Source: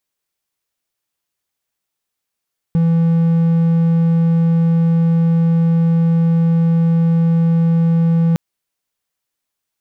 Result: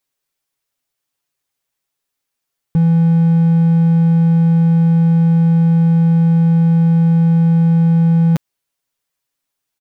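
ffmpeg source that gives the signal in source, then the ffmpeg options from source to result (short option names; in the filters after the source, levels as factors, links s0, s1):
-f lavfi -i "aevalsrc='0.376*(1-4*abs(mod(166*t+0.25,1)-0.5))':d=5.61:s=44100"
-af "aecho=1:1:7.3:0.59"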